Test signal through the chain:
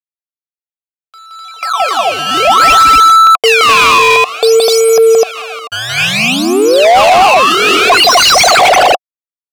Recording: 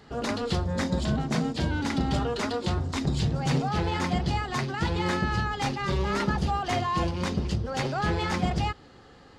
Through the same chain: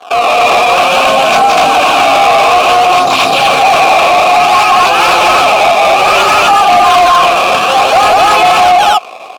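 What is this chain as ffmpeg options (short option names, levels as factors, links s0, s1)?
-filter_complex "[0:a]acrusher=samples=17:mix=1:aa=0.000001:lfo=1:lforange=27.2:lforate=0.58,aeval=exprs='sgn(val(0))*max(abs(val(0))-0.00251,0)':c=same,asplit=3[s0][s1][s2];[s0]bandpass=f=730:t=q:w=8,volume=1[s3];[s1]bandpass=f=1090:t=q:w=8,volume=0.501[s4];[s2]bandpass=f=2440:t=q:w=8,volume=0.355[s5];[s3][s4][s5]amix=inputs=3:normalize=0,asplit=2[s6][s7];[s7]aecho=0:1:172|253.6:0.794|1[s8];[s6][s8]amix=inputs=2:normalize=0,crystalizer=i=5.5:c=0,asplit=2[s9][s10];[s10]highpass=f=720:p=1,volume=14.1,asoftclip=type=tanh:threshold=0.178[s11];[s9][s11]amix=inputs=2:normalize=0,lowpass=f=5200:p=1,volume=0.501,alimiter=level_in=16.8:limit=0.891:release=50:level=0:latency=1,volume=0.891"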